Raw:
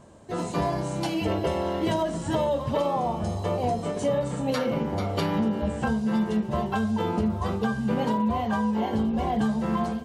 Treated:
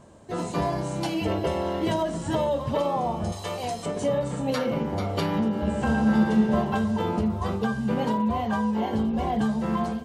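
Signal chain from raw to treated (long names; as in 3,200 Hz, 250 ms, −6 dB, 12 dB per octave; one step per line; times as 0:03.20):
0:03.32–0:03.86: tilt shelving filter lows −8.5 dB, about 1,200 Hz
0:05.50–0:06.55: thrown reverb, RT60 2.6 s, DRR 0 dB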